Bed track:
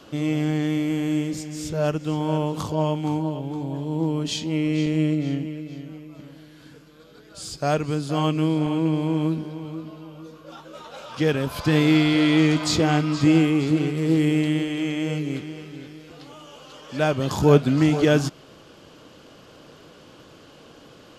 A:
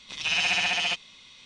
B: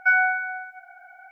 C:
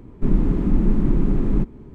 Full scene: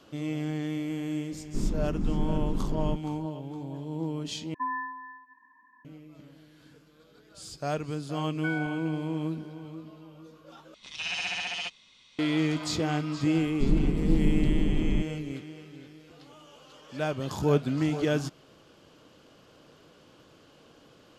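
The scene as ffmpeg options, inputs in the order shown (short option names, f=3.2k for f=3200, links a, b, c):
-filter_complex "[3:a]asplit=2[a][b];[2:a]asplit=2[c][d];[0:a]volume=-8.5dB[e];[c]lowpass=f=2.1k:t=q:w=0.5098,lowpass=f=2.1k:t=q:w=0.6013,lowpass=f=2.1k:t=q:w=0.9,lowpass=f=2.1k:t=q:w=2.563,afreqshift=-2500[f];[b]lowpass=f=1.1k:w=0.5412,lowpass=f=1.1k:w=1.3066[g];[e]asplit=3[h][i][j];[h]atrim=end=4.544[k];[f]atrim=end=1.31,asetpts=PTS-STARTPTS,volume=-12.5dB[l];[i]atrim=start=5.846:end=10.744[m];[1:a]atrim=end=1.45,asetpts=PTS-STARTPTS,volume=-7.5dB[n];[j]atrim=start=12.186[o];[a]atrim=end=1.94,asetpts=PTS-STARTPTS,volume=-11dB,afade=t=in:d=0.004:c=hsin,afade=t=out:st=1.936:d=0.004:c=hsin,adelay=1320[p];[d]atrim=end=1.31,asetpts=PTS-STARTPTS,volume=-16dB,afade=t=in:d=0.004:c=hsin,afade=t=out:st=1.306:d=0.004:c=hsin,adelay=8380[q];[g]atrim=end=1.94,asetpts=PTS-STARTPTS,volume=-7dB,afade=t=in:d=0.004:c=hsin,afade=t=out:st=1.936:d=0.004:c=hsin,adelay=13380[r];[k][l]acrossfade=d=0.004:c1=hsin:c2=hsin[s];[s][m]acrossfade=d=0.004:c1=hsin:c2=hsin[t];[t][n]acrossfade=d=0.004:c1=hsin:c2=hsin[u];[u][o]acrossfade=d=0.004:c1=hsin:c2=hsin[v];[v][p][q][r]amix=inputs=4:normalize=0"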